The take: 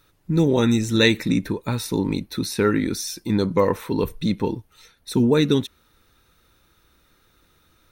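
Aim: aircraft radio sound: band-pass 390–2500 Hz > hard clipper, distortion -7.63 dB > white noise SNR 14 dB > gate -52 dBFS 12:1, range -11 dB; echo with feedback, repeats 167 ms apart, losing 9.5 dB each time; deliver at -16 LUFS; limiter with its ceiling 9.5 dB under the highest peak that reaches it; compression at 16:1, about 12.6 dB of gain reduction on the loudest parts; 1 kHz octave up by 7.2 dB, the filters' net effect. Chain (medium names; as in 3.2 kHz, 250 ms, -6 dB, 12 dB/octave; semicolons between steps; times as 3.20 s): peaking EQ 1 kHz +8.5 dB; compression 16:1, threshold -23 dBFS; peak limiter -22 dBFS; band-pass 390–2500 Hz; feedback delay 167 ms, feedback 33%, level -9.5 dB; hard clipper -36 dBFS; white noise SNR 14 dB; gate -52 dBFS 12:1, range -11 dB; trim +24.5 dB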